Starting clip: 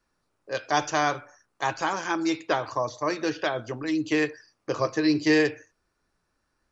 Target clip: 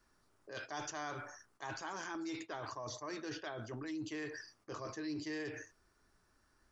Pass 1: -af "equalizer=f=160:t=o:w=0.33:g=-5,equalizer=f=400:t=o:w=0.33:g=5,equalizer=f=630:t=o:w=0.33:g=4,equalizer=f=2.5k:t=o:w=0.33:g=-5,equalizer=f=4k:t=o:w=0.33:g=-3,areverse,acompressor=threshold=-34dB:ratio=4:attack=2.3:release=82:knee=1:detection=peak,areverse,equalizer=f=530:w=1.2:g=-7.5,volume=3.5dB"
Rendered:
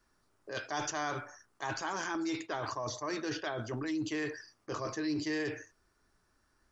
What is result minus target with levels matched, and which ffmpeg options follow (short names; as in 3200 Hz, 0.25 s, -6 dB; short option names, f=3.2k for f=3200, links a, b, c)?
compressor: peak gain reduction -7 dB
-af "equalizer=f=160:t=o:w=0.33:g=-5,equalizer=f=400:t=o:w=0.33:g=5,equalizer=f=630:t=o:w=0.33:g=4,equalizer=f=2.5k:t=o:w=0.33:g=-5,equalizer=f=4k:t=o:w=0.33:g=-3,areverse,acompressor=threshold=-43.5dB:ratio=4:attack=2.3:release=82:knee=1:detection=peak,areverse,equalizer=f=530:w=1.2:g=-7.5,volume=3.5dB"